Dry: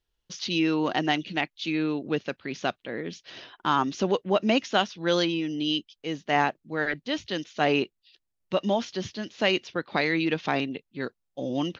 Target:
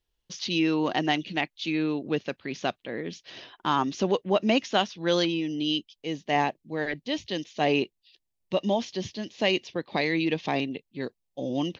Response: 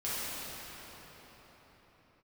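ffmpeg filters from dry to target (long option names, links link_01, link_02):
-af "asetnsamples=nb_out_samples=441:pad=0,asendcmd='5.25 equalizer g -14',equalizer=frequency=1400:width=3.7:gain=-4.5"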